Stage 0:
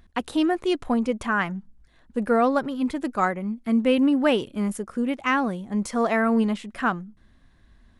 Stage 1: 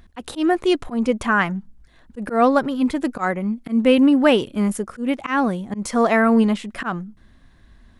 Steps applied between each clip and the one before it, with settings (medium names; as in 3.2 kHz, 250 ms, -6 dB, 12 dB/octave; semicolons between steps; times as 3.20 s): slow attack 128 ms; trim +5.5 dB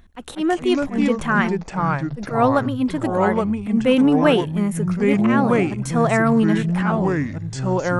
band-stop 4.8 kHz, Q 7.1; ever faster or slower copies 153 ms, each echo -4 st, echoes 3; trim -1.5 dB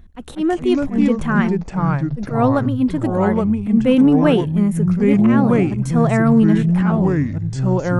bass shelf 350 Hz +11 dB; trim -3.5 dB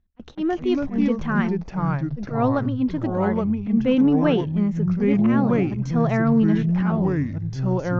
steep low-pass 6.4 kHz 72 dB/octave; gate with hold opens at -22 dBFS; trim -5 dB